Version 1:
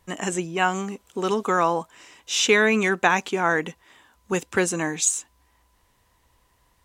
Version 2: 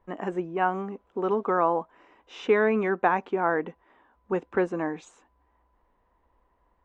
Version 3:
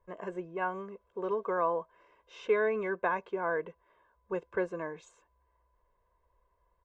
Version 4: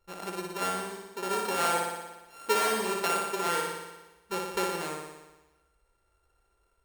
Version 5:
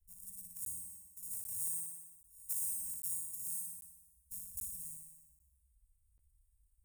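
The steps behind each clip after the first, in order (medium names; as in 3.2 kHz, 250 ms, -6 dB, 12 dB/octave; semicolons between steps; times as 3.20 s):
low-pass 1.1 kHz 12 dB/octave; peaking EQ 110 Hz -14 dB 1.2 oct
comb 1.9 ms, depth 85%; trim -9 dB
sorted samples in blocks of 32 samples; on a send: flutter echo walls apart 10.1 m, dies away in 1.1 s
inverse Chebyshev band-stop 250–3900 Hz, stop band 50 dB; crackling interface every 0.79 s, samples 512, zero, from 0.65 s; trim +2 dB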